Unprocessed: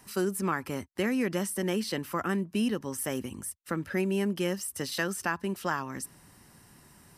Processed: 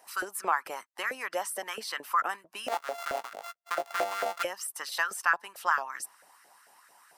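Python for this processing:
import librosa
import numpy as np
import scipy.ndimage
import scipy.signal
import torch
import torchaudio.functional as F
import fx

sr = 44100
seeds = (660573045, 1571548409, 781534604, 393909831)

y = fx.sample_sort(x, sr, block=64, at=(2.68, 4.43))
y = fx.filter_lfo_highpass(y, sr, shape='saw_up', hz=4.5, low_hz=580.0, high_hz=1500.0, q=3.4)
y = fx.hpss(y, sr, part='harmonic', gain_db=-8)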